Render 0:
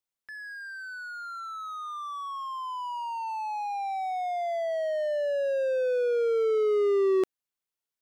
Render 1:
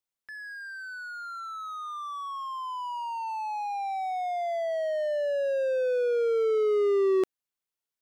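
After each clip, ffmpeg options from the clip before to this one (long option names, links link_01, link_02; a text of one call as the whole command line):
ffmpeg -i in.wav -af anull out.wav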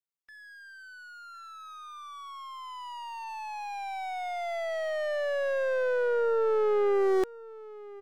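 ffmpeg -i in.wav -af "aeval=exprs='0.133*(cos(1*acos(clip(val(0)/0.133,-1,1)))-cos(1*PI/2))+0.0266*(cos(2*acos(clip(val(0)/0.133,-1,1)))-cos(2*PI/2))+0.0119*(cos(7*acos(clip(val(0)/0.133,-1,1)))-cos(7*PI/2))':channel_layout=same,aecho=1:1:1054:0.106,volume=-1.5dB" -ar 44100 -c:a aac -b:a 192k out.aac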